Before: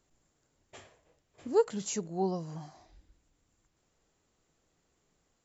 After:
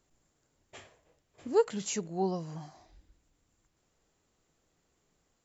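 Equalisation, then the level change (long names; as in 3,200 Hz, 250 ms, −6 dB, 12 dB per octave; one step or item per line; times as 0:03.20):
dynamic equaliser 2,400 Hz, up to +5 dB, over −57 dBFS, Q 1.1
0.0 dB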